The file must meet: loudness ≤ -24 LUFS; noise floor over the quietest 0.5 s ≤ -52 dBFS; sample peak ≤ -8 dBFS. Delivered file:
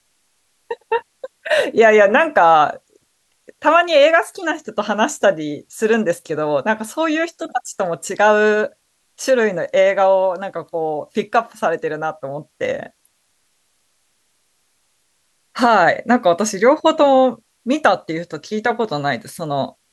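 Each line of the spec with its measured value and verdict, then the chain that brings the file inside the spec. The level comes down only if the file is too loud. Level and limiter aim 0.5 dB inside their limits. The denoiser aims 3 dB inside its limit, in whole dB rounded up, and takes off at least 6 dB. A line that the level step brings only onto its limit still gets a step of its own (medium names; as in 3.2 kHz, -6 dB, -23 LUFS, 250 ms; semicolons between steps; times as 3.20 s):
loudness -17.0 LUFS: fail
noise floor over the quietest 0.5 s -64 dBFS: pass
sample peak -2.0 dBFS: fail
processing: trim -7.5 dB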